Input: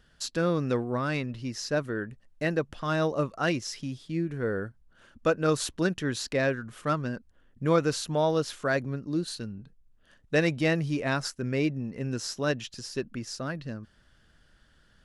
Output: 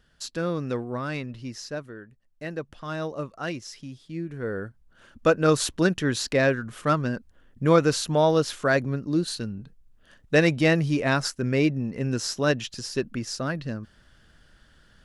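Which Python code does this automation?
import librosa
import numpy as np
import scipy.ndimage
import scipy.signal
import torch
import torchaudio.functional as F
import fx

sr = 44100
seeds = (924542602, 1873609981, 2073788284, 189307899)

y = fx.gain(x, sr, db=fx.line((1.53, -1.5), (2.07, -11.5), (2.63, -4.5), (4.0, -4.5), (5.3, 5.0)))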